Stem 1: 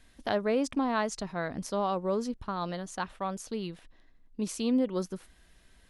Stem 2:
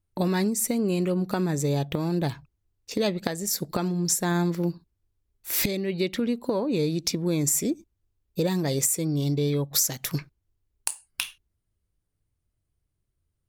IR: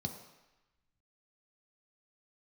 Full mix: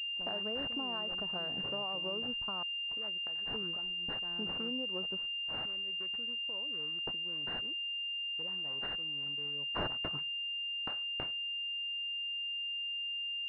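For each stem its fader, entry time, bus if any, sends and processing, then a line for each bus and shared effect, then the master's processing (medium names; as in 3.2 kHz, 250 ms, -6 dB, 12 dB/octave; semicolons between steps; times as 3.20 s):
-1.5 dB, 0.00 s, muted 2.63–3.54 s, no send, bass shelf 400 Hz -9 dB; compression 12:1, threshold -36 dBFS, peak gain reduction 11.5 dB
9.52 s -23.5 dB -> 10.03 s -13 dB, 0.00 s, no send, tilt shelf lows -7.5 dB, about 700 Hz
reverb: none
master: gate -55 dBFS, range -12 dB; class-D stage that switches slowly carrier 2.8 kHz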